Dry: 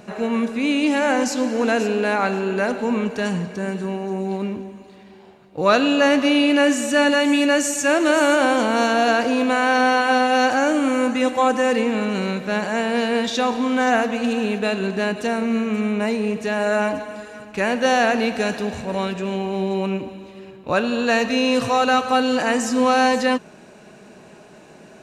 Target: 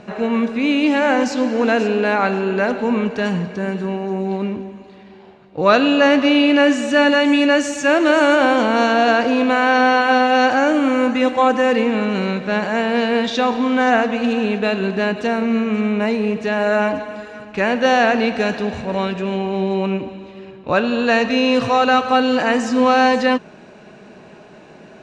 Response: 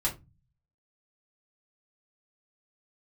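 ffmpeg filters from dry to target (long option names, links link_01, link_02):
-af "lowpass=4500,volume=3dB"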